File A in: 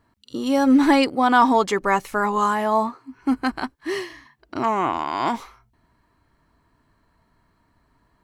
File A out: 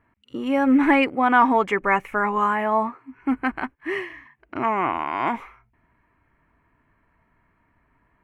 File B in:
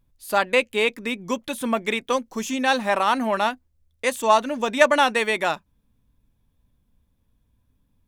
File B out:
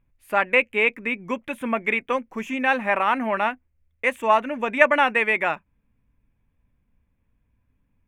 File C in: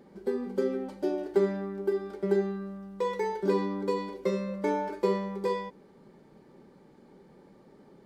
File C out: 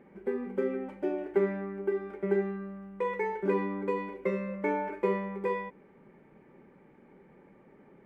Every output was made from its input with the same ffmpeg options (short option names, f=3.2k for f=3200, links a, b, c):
-af "highshelf=f=3.2k:t=q:w=3:g=-11,volume=-2dB"